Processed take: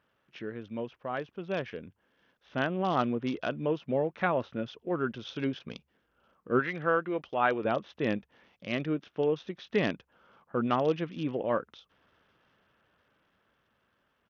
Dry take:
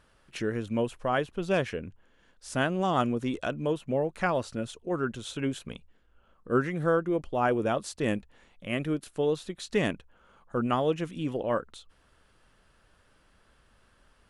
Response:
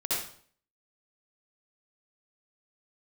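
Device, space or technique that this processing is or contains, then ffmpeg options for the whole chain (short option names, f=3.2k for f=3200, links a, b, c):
Bluetooth headset: -filter_complex "[0:a]asettb=1/sr,asplit=3[a][b][c];[a]atrim=end=6.594[d];[b]atrim=start=6.59:end=7.65,asetpts=PTS-STARTPTS,afade=t=in:d=0.004:c=qsin,afade=t=out:st=1.056:d=0.004:c=qsin,tiltshelf=f=710:g=-6.5[e];[c]atrim=start=7.646[f];[d][e]acrossfade=d=0.004:c1=hsin:c2=qsin[g];[g][f]acrossfade=d=0.004:c1=qsin:c2=hsin,highpass=120,dynaudnorm=f=420:g=11:m=8dB,aresample=8000,aresample=44100,volume=-8dB" -ar 48000 -c:a sbc -b:a 64k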